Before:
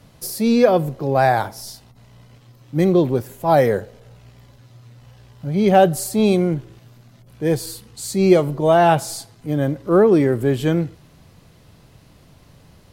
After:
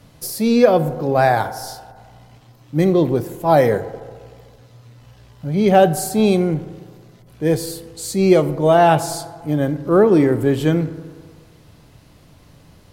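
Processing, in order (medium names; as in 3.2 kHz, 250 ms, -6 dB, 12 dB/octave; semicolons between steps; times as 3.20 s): FDN reverb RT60 1.8 s, low-frequency decay 0.8×, high-frequency decay 0.3×, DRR 12.5 dB; trim +1 dB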